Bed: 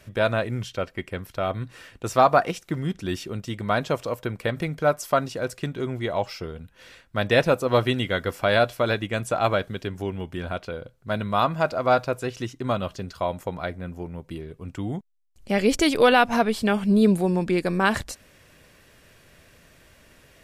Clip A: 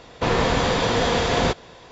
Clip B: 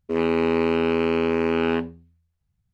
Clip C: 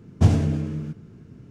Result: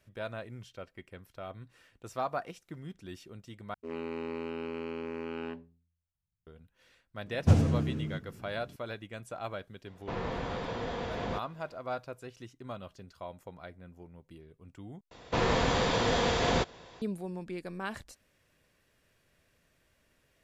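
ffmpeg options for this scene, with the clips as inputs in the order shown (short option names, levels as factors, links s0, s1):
-filter_complex "[1:a]asplit=2[s0][s1];[0:a]volume=0.15[s2];[s0]aemphasis=mode=reproduction:type=75fm[s3];[s2]asplit=3[s4][s5][s6];[s4]atrim=end=3.744[s7];[2:a]atrim=end=2.73,asetpts=PTS-STARTPTS,volume=0.15[s8];[s5]atrim=start=6.466:end=15.114[s9];[s1]atrim=end=1.91,asetpts=PTS-STARTPTS,volume=0.447[s10];[s6]atrim=start=17.016[s11];[3:a]atrim=end=1.5,asetpts=PTS-STARTPTS,volume=0.531,afade=t=in:d=0.004:c=hsin,afade=t=out:st=1.496:d=0.004:c=hsin,adelay=7260[s12];[s3]atrim=end=1.91,asetpts=PTS-STARTPTS,volume=0.168,afade=t=in:d=0.004:c=hsin,afade=t=out:st=1.906:d=0.004:c=hsin,adelay=434826S[s13];[s7][s8]acrossfade=d=0.004:c1=hsin:c2=hsin[s14];[s14][s9]acrossfade=d=0.004:c1=hsin:c2=hsin[s15];[s15][s10]acrossfade=d=0.004:c1=hsin:c2=hsin[s16];[s16][s11]acrossfade=d=0.004:c1=hsin:c2=hsin[s17];[s17][s12][s13]amix=inputs=3:normalize=0"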